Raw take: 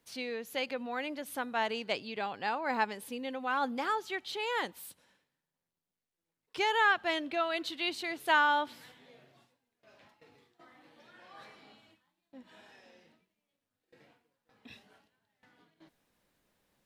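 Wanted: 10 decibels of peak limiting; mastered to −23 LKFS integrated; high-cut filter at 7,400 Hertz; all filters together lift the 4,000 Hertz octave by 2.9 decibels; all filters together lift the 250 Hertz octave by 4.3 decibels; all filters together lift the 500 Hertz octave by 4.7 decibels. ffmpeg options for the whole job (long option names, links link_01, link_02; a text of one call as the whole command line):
ffmpeg -i in.wav -af "lowpass=7400,equalizer=frequency=250:width_type=o:gain=3.5,equalizer=frequency=500:width_type=o:gain=5,equalizer=frequency=4000:width_type=o:gain=4,volume=10dB,alimiter=limit=-12dB:level=0:latency=1" out.wav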